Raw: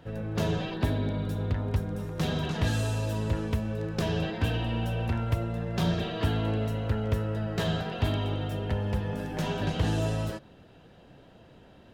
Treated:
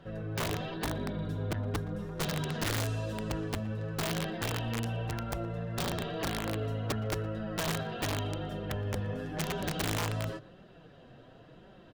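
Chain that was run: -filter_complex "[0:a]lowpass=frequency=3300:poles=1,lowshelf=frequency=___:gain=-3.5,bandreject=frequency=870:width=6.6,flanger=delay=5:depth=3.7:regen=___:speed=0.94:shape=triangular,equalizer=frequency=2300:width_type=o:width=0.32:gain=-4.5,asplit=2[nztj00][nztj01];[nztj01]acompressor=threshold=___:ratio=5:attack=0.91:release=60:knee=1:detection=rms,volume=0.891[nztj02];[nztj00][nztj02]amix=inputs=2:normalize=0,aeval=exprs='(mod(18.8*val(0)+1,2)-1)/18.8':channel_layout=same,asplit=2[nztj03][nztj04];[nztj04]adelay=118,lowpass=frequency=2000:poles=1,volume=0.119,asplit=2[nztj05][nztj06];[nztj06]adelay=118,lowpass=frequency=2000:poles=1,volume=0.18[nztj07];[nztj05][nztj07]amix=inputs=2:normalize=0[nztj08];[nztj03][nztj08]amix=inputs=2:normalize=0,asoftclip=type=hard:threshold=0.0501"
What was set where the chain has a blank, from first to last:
470, -16, 0.00562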